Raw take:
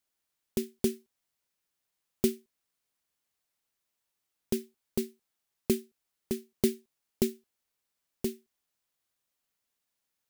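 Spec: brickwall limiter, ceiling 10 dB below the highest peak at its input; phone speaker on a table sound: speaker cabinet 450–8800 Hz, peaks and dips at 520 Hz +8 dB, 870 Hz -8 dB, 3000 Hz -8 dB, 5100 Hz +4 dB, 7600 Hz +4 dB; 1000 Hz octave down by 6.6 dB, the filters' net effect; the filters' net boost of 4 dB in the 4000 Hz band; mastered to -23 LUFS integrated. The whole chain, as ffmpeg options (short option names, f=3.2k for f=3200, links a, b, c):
-af "equalizer=f=1k:t=o:g=-6,equalizer=f=4k:t=o:g=5,alimiter=limit=-20dB:level=0:latency=1,highpass=f=450:w=0.5412,highpass=f=450:w=1.3066,equalizer=f=520:t=q:w=4:g=8,equalizer=f=870:t=q:w=4:g=-8,equalizer=f=3k:t=q:w=4:g=-8,equalizer=f=5.1k:t=q:w=4:g=4,equalizer=f=7.6k:t=q:w=4:g=4,lowpass=f=8.8k:w=0.5412,lowpass=f=8.8k:w=1.3066,volume=22dB"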